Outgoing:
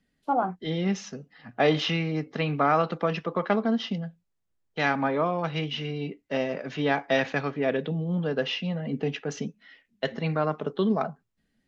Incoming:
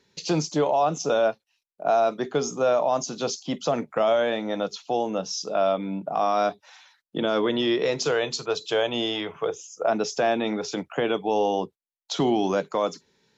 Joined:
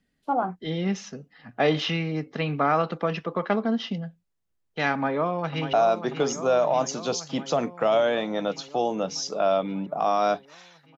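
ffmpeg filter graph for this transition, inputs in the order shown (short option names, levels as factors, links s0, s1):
-filter_complex "[0:a]apad=whole_dur=10.97,atrim=end=10.97,atrim=end=5.732[s0];[1:a]atrim=start=1.878:end=7.12[s1];[s0][s1]acrossfade=d=0.004:c1=hsin:c2=hsin,asplit=2[s2][s3];[s3]afade=t=in:st=4.93:d=0.01,afade=t=out:st=5.73:d=0.01,aecho=0:1:590|1180|1770|2360|2950|3540|4130|4720|5310|5900|6490|7080:0.354813|0.26611|0.199583|0.149687|0.112265|0.0841989|0.0631492|0.0473619|0.0355214|0.0266411|0.0199808|0.0149856[s4];[s2][s4]amix=inputs=2:normalize=0"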